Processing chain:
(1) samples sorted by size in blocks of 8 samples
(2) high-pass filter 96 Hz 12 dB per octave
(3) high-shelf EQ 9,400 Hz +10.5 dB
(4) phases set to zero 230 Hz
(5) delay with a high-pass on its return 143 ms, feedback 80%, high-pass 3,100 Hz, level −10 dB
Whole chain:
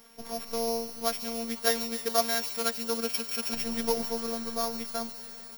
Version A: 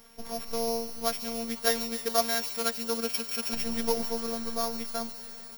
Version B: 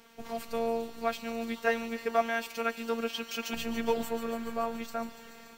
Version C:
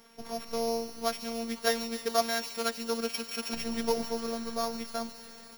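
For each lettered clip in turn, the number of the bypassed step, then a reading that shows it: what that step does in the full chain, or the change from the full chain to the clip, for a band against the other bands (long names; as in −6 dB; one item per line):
2, 125 Hz band +1.5 dB
1, distortion level −9 dB
3, 8 kHz band −5.0 dB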